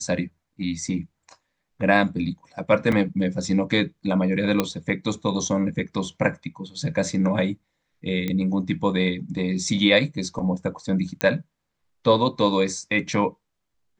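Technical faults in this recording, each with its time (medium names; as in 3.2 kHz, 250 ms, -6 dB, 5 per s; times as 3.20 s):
2.92 s: dropout 3.5 ms
4.60 s: pop -6 dBFS
8.28 s: pop -14 dBFS
11.21 s: pop -6 dBFS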